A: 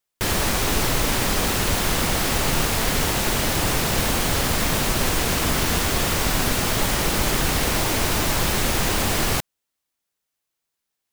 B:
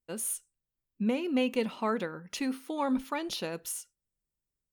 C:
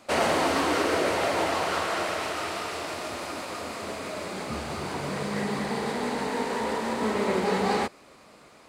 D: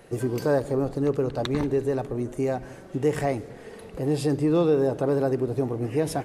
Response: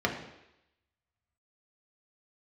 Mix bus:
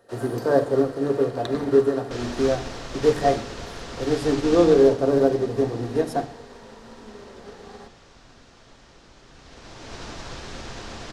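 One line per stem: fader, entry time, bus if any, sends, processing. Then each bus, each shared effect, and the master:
0:04.56 −7.5 dB → 0:05.07 −17.5 dB → 0:09.23 −17.5 dB → 0:10.00 −7 dB, 1.90 s, send −20.5 dB, low-pass filter 6,500 Hz 24 dB per octave
−16.0 dB, 0.00 s, no send, no processing
−9.0 dB, 0.00 s, send −10.5 dB, downward compressor 2.5 to 1, threshold −28 dBFS, peak gain reduction 6 dB
−0.5 dB, 0.00 s, send −9 dB, low-shelf EQ 150 Hz −6 dB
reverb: on, RT60 0.85 s, pre-delay 3 ms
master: expander for the loud parts 1.5 to 1, over −36 dBFS

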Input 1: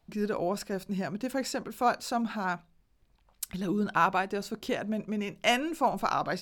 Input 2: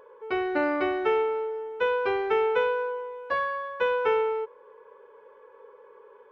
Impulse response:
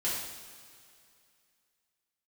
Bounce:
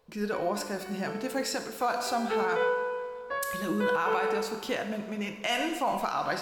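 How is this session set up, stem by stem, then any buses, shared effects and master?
+0.5 dB, 0.00 s, send −9.5 dB, low-shelf EQ 370 Hz −8 dB
0:01.99 −21.5 dB → 0:02.30 −9.5 dB, 0.00 s, send −6 dB, no processing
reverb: on, pre-delay 3 ms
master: brickwall limiter −18.5 dBFS, peak gain reduction 10 dB

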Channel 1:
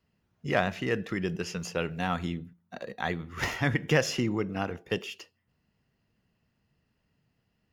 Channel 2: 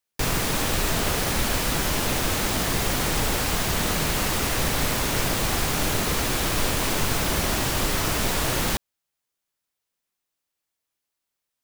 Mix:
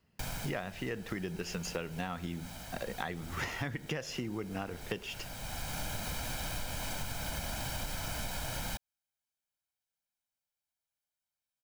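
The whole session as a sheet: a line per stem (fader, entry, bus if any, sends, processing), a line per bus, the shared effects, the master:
+2.5 dB, 0.00 s, no send, no processing
−11.5 dB, 0.00 s, no send, comb filter 1.3 ms, depth 70%; automatic ducking −12 dB, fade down 0.95 s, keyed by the first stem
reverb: not used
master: downward compressor 16 to 1, threshold −33 dBFS, peak gain reduction 18 dB

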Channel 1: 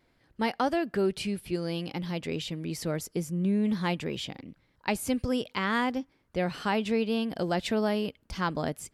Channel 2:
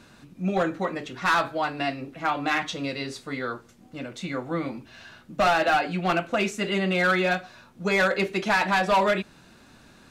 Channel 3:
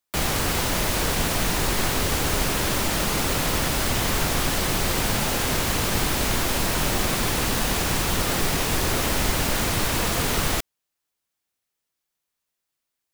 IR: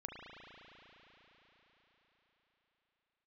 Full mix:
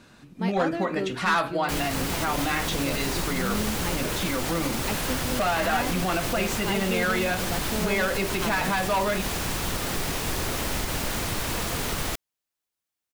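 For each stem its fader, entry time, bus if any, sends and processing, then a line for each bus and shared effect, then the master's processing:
−4.5 dB, 0.00 s, no bus, no send, no processing
−1.0 dB, 0.00 s, bus A, no send, downward compressor 1.5 to 1, threshold −33 dBFS, peak gain reduction 5.5 dB
−12.0 dB, 1.55 s, bus A, no send, no processing
bus A: 0.0 dB, automatic gain control gain up to 7 dB; brickwall limiter −17 dBFS, peak gain reduction 7 dB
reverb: not used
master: no processing

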